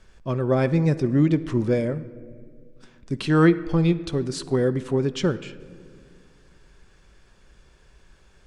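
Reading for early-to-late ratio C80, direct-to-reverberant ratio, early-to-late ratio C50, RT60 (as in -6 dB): 17.0 dB, 12.0 dB, 15.5 dB, 2.0 s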